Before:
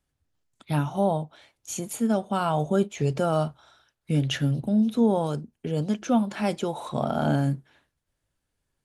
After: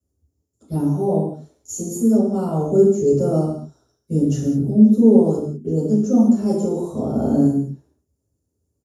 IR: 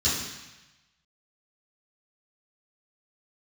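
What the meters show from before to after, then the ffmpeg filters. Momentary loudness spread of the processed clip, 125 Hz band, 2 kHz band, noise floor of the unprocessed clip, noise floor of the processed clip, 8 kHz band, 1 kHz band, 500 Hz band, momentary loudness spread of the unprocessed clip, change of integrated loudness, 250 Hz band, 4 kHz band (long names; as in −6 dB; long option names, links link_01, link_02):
15 LU, +4.5 dB, below −15 dB, −81 dBFS, −75 dBFS, +4.5 dB, −3.5 dB, +8.5 dB, 10 LU, +8.0 dB, +9.5 dB, below −10 dB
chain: -filter_complex "[0:a]firequalizer=gain_entry='entry(180,0);entry(400,10);entry(600,2);entry(1700,-20);entry(3400,-22);entry(5500,-3);entry(11000,7)':delay=0.05:min_phase=1[link_01];[1:a]atrim=start_sample=2205,afade=type=out:start_time=0.27:duration=0.01,atrim=end_sample=12348[link_02];[link_01][link_02]afir=irnorm=-1:irlink=0,volume=-10.5dB"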